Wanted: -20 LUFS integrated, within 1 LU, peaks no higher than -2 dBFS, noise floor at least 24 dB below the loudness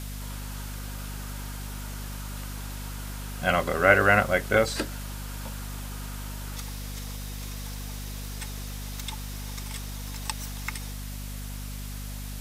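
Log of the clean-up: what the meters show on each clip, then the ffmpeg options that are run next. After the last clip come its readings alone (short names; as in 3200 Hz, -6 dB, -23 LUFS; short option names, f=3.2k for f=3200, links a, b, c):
hum 50 Hz; harmonics up to 250 Hz; hum level -34 dBFS; noise floor -36 dBFS; noise floor target -54 dBFS; loudness -30.0 LUFS; peak -4.5 dBFS; loudness target -20.0 LUFS
-> -af "bandreject=f=50:t=h:w=6,bandreject=f=100:t=h:w=6,bandreject=f=150:t=h:w=6,bandreject=f=200:t=h:w=6,bandreject=f=250:t=h:w=6"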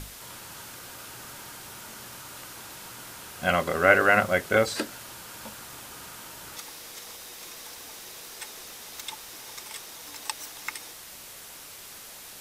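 hum none; noise floor -45 dBFS; noise floor target -54 dBFS
-> -af "afftdn=nr=9:nf=-45"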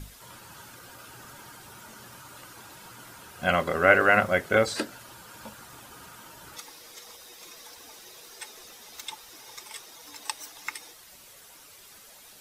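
noise floor -51 dBFS; loudness -25.0 LUFS; peak -4.5 dBFS; loudness target -20.0 LUFS
-> -af "volume=5dB,alimiter=limit=-2dB:level=0:latency=1"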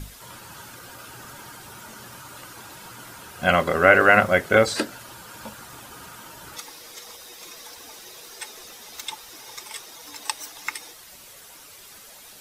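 loudness -20.5 LUFS; peak -2.0 dBFS; noise floor -46 dBFS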